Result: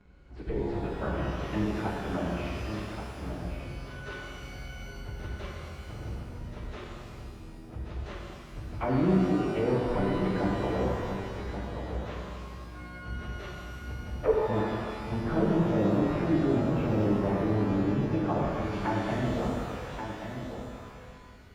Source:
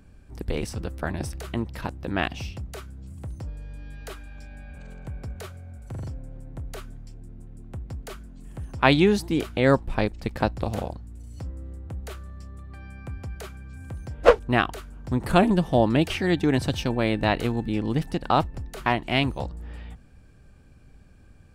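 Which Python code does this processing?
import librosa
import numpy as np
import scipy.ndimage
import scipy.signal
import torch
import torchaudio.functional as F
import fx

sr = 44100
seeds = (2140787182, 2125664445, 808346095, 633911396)

p1 = fx.pitch_bins(x, sr, semitones=-1.5)
p2 = scipy.signal.sosfilt(scipy.signal.butter(2, 3500.0, 'lowpass', fs=sr, output='sos'), p1)
p3 = fx.low_shelf(p2, sr, hz=210.0, db=-7.0)
p4 = fx.over_compress(p3, sr, threshold_db=-31.0, ratio=-1.0)
p5 = p3 + F.gain(torch.from_numpy(p4), -3.0).numpy()
p6 = fx.env_lowpass_down(p5, sr, base_hz=550.0, full_db=-21.5)
p7 = p6 + fx.echo_single(p6, sr, ms=1130, db=-8.0, dry=0)
p8 = fx.rev_shimmer(p7, sr, seeds[0], rt60_s=2.0, semitones=12, shimmer_db=-8, drr_db=-3.0)
y = F.gain(torch.from_numpy(p8), -6.5).numpy()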